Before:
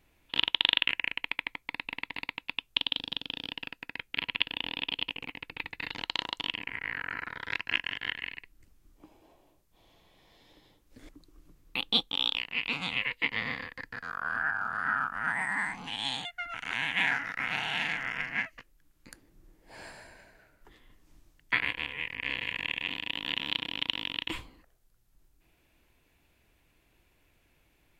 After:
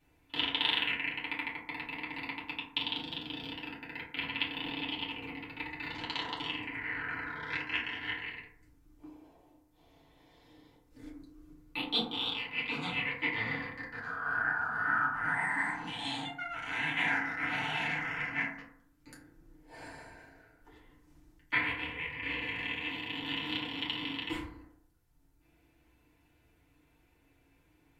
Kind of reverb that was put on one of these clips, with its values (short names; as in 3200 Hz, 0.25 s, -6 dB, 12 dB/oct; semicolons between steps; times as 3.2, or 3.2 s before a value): FDN reverb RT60 0.64 s, low-frequency decay 1.2×, high-frequency decay 0.35×, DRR -7.5 dB; gain -9 dB